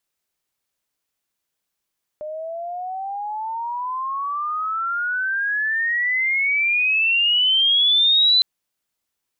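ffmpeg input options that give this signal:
-f lavfi -i "aevalsrc='pow(10,(-12+15.5*(t/6.21-1))/20)*sin(2*PI*603*6.21/(33*log(2)/12)*(exp(33*log(2)/12*t/6.21)-1))':d=6.21:s=44100"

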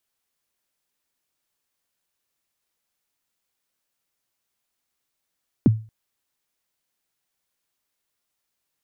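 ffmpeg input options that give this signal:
-f lavfi -i "aevalsrc='0.398*pow(10,-3*t/0.34)*sin(2*PI*(330*0.025/log(110/330)*(exp(log(110/330)*min(t,0.025)/0.025)-1)+110*max(t-0.025,0)))':d=0.23:s=44100"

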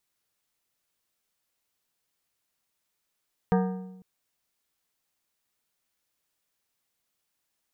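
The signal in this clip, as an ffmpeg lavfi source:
-f lavfi -i "aevalsrc='0.112*pow(10,-3*t/1.02)*sin(2*PI*186*t)+0.0708*pow(10,-3*t/0.775)*sin(2*PI*465*t)+0.0447*pow(10,-3*t/0.673)*sin(2*PI*744*t)+0.0282*pow(10,-3*t/0.629)*sin(2*PI*930*t)+0.0178*pow(10,-3*t/0.582)*sin(2*PI*1209*t)+0.0112*pow(10,-3*t/0.537)*sin(2*PI*1581*t)+0.00708*pow(10,-3*t/0.528)*sin(2*PI*1674*t)+0.00447*pow(10,-3*t/0.511)*sin(2*PI*1860*t)':d=0.5:s=44100"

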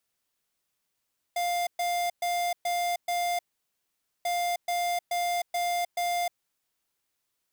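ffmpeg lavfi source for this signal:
-f lavfi -i "aevalsrc='0.0398*(2*lt(mod(701*t,1),0.5)-1)*clip(min(mod(mod(t,2.89),0.43),0.31-mod(mod(t,2.89),0.43))/0.005,0,1)*lt(mod(t,2.89),2.15)':d=5.78:s=44100"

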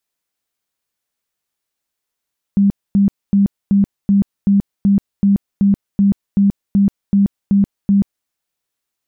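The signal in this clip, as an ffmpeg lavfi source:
-f lavfi -i "aevalsrc='0.376*sin(2*PI*199*mod(t,0.38))*lt(mod(t,0.38),26/199)':d=5.7:s=44100"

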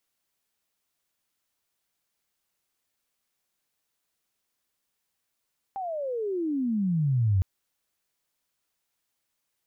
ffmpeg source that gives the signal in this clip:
-f lavfi -i "aevalsrc='pow(10,(-30+11*t/1.66)/20)*sin(2*PI*800*1.66/log(90/800)*(exp(log(90/800)*t/1.66)-1))':d=1.66:s=44100"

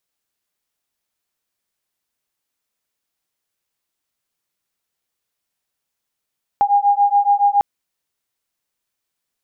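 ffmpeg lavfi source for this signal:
-f lavfi -i "aevalsrc='0.178*(sin(2*PI*808*t)+sin(2*PI*815.1*t))':d=1:s=44100"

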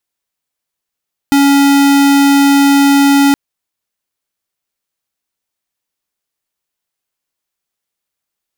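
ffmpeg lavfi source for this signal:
-f lavfi -i "aevalsrc='0.398*(2*lt(mod(280*t,1),0.5)-1)':d=2.02:s=44100"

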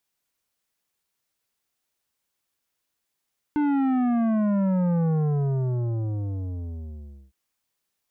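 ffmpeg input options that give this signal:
-f lavfi -i "aevalsrc='0.0891*clip((3.76-t)/2.24,0,1)*tanh(3.55*sin(2*PI*300*3.76/log(65/300)*(exp(log(65/300)*t/3.76)-1)))/tanh(3.55)':d=3.76:s=44100"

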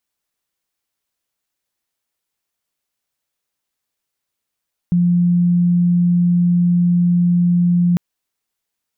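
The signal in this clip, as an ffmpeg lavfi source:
-f lavfi -i "aevalsrc='0.282*sin(2*PI*175*t)':d=3.05:s=44100"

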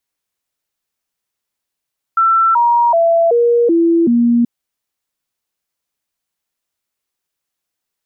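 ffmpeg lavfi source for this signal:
-f lavfi -i "aevalsrc='0.376*clip(min(mod(t,0.38),0.38-mod(t,0.38))/0.005,0,1)*sin(2*PI*1340*pow(2,-floor(t/0.38)/2)*mod(t,0.38))':d=2.28:s=44100"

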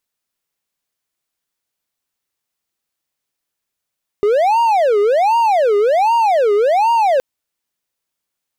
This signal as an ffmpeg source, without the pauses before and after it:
-f lavfi -i "aevalsrc='0.376*(1-4*abs(mod((671*t-265/(2*PI*1.3)*sin(2*PI*1.3*t))+0.25,1)-0.5))':d=2.97:s=44100"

